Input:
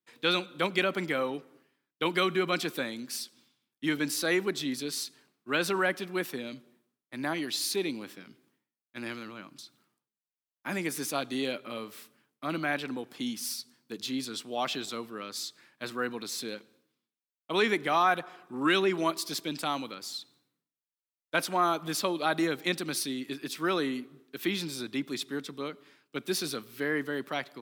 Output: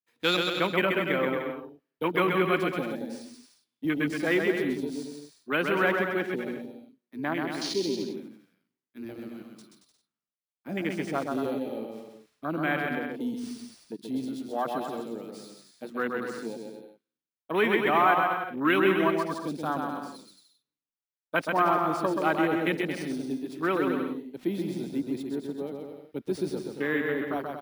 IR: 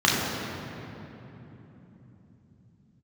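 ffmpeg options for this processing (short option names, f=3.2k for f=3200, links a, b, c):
-filter_complex "[0:a]asettb=1/sr,asplit=3[a][b][c];[a]atrim=end=9.214[d];[b]atrim=start=9.21:end=9.62,asetpts=PTS-STARTPTS,afade=t=in:d=0.004:c=qsin,afade=t=out:st=0.406:d=0.004:c=qsin,aemphasis=mode=production:type=50kf[e];[c]atrim=start=9.616[f];[d][e]acrossfade=d=0.004:c1=hsin:c2=qsin[g];[g][f]acrossfade=d=0.004:c1=qsin:c2=hsin,acrusher=samples=3:mix=1:aa=0.000001,afwtdn=0.0224,asplit=2[h][i];[i]aecho=0:1:130|227.5|300.6|355.5|396.6:0.631|0.398|0.251|0.158|0.1[j];[h][j]amix=inputs=2:normalize=0,volume=2dB"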